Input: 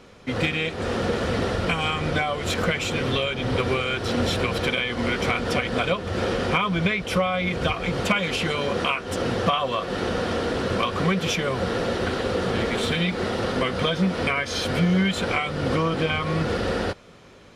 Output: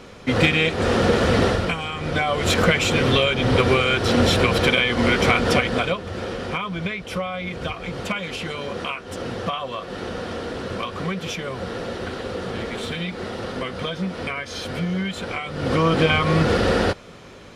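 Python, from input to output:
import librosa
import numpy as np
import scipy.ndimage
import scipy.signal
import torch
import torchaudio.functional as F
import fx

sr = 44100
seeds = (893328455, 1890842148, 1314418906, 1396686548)

y = fx.gain(x, sr, db=fx.line((1.47, 6.5), (1.87, -5.0), (2.4, 6.0), (5.52, 6.0), (6.21, -4.5), (15.42, -4.5), (15.91, 6.0)))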